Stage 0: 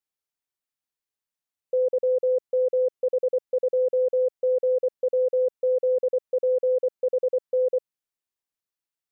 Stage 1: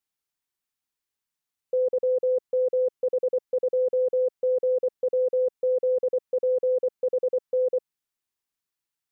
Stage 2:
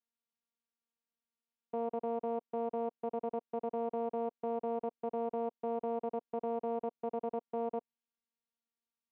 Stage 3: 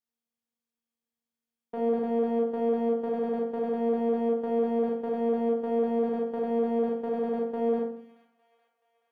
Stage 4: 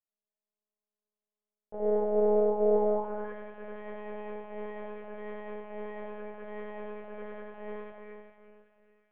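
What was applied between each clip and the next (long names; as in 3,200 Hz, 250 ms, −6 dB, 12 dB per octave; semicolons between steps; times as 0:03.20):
parametric band 570 Hz −5.5 dB 0.55 octaves; level +3 dB
channel vocoder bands 4, saw 232 Hz; brickwall limiter −25.5 dBFS, peak gain reduction 9.5 dB; level −2 dB
leveller curve on the samples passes 1; delay with a high-pass on its return 428 ms, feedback 53%, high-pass 1,900 Hz, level −13 dB; convolution reverb RT60 0.55 s, pre-delay 30 ms, DRR −1.5 dB
four-comb reverb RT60 2.5 s, combs from 28 ms, DRR −1.5 dB; band-pass filter sweep 570 Hz → 2,100 Hz, 0:02.80–0:03.39; one-pitch LPC vocoder at 8 kHz 210 Hz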